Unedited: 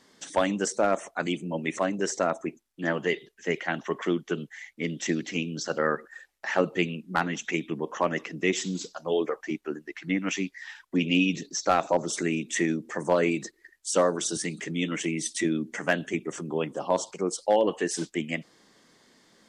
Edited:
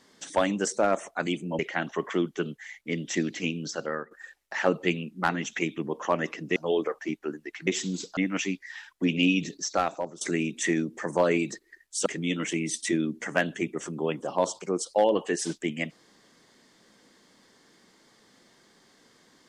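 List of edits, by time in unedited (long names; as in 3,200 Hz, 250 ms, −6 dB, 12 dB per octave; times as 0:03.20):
0:01.59–0:03.51: remove
0:05.50–0:06.03: fade out, to −13.5 dB
0:08.48–0:08.98: move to 0:10.09
0:11.53–0:12.13: fade out, to −19 dB
0:13.98–0:14.58: remove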